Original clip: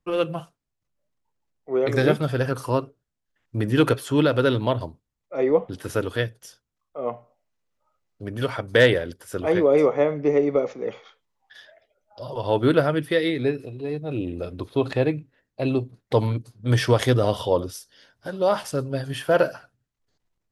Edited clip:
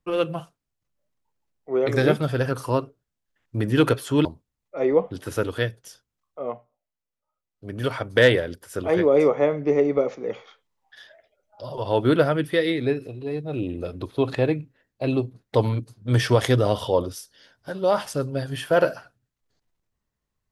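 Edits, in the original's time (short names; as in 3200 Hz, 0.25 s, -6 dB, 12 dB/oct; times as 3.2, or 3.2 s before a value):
4.25–4.83 cut
6.99–8.35 dip -12 dB, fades 0.24 s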